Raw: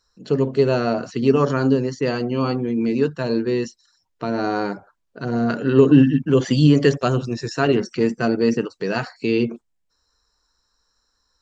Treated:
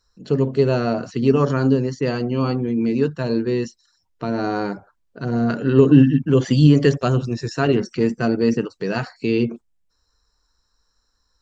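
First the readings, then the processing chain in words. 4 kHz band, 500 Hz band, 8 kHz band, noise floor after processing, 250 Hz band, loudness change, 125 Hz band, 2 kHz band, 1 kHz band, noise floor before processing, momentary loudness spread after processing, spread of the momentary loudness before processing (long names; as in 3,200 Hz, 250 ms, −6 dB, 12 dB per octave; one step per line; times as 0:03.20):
−1.5 dB, −0.5 dB, can't be measured, −69 dBFS, +0.5 dB, +0.5 dB, +3.0 dB, −1.5 dB, −1.5 dB, −71 dBFS, 12 LU, 11 LU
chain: low-shelf EQ 160 Hz +7.5 dB
level −1.5 dB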